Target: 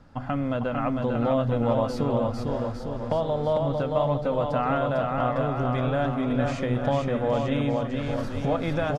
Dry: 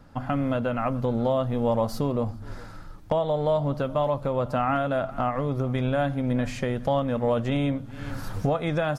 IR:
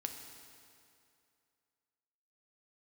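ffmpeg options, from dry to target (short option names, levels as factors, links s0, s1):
-filter_complex "[0:a]lowpass=7400,asplit=2[s0][s1];[s1]aecho=0:1:450|855|1220|1548|1843:0.631|0.398|0.251|0.158|0.1[s2];[s0][s2]amix=inputs=2:normalize=0,volume=0.841"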